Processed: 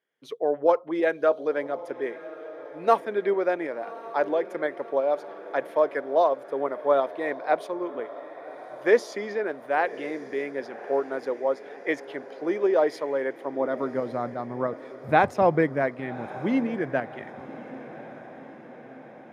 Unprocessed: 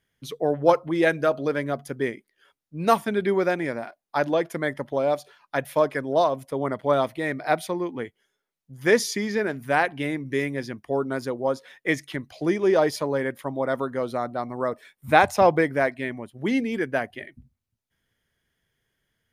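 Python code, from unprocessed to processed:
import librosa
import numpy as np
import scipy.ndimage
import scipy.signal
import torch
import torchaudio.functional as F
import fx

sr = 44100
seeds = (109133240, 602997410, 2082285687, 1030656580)

p1 = fx.tremolo_shape(x, sr, shape='saw_up', hz=3.0, depth_pct=40)
p2 = fx.filter_sweep_highpass(p1, sr, from_hz=430.0, to_hz=120.0, start_s=13.38, end_s=14.16, q=1.2)
p3 = fx.lowpass(p2, sr, hz=1700.0, slope=6)
y = p3 + fx.echo_diffused(p3, sr, ms=1130, feedback_pct=60, wet_db=-16.0, dry=0)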